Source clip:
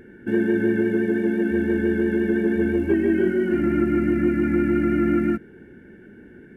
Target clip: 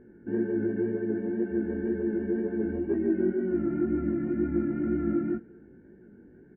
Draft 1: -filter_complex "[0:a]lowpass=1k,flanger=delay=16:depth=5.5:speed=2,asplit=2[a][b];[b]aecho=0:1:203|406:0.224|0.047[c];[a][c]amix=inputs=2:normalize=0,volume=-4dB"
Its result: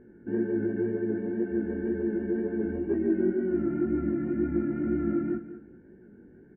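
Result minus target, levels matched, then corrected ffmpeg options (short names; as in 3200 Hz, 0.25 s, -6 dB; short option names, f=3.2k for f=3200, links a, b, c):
echo-to-direct +12 dB
-filter_complex "[0:a]lowpass=1k,flanger=delay=16:depth=5.5:speed=2,asplit=2[a][b];[b]aecho=0:1:203|406:0.0562|0.0118[c];[a][c]amix=inputs=2:normalize=0,volume=-4dB"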